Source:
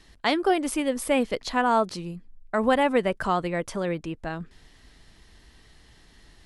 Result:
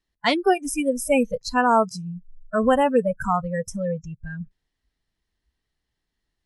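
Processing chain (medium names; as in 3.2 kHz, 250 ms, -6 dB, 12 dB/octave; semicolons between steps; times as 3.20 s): spectral noise reduction 30 dB; 1.82–3.34 s: dynamic bell 2.2 kHz, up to -7 dB, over -44 dBFS, Q 1.5; trim +4 dB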